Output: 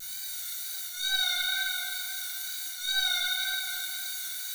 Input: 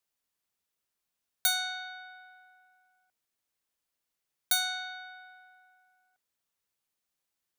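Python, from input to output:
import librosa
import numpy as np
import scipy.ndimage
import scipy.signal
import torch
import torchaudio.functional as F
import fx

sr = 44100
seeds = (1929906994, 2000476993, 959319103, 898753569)

y = fx.bin_compress(x, sr, power=0.4)
y = scipy.signal.sosfilt(scipy.signal.bessel(2, 2900.0, 'highpass', norm='mag', fs=sr, output='sos'), y)
y = fx.over_compress(y, sr, threshold_db=-38.0, ratio=-0.5)
y = fx.stretch_grains(y, sr, factor=0.6, grain_ms=43.0)
y = fx.wow_flutter(y, sr, seeds[0], rate_hz=2.1, depth_cents=61.0)
y = 10.0 ** (-36.0 / 20.0) * np.tanh(y / 10.0 ** (-36.0 / 20.0))
y = fx.echo_feedback(y, sr, ms=259, feedback_pct=58, wet_db=-7.5)
y = fx.room_shoebox(y, sr, seeds[1], volume_m3=330.0, walls='mixed', distance_m=3.6)
y = y * librosa.db_to_amplitude(4.5)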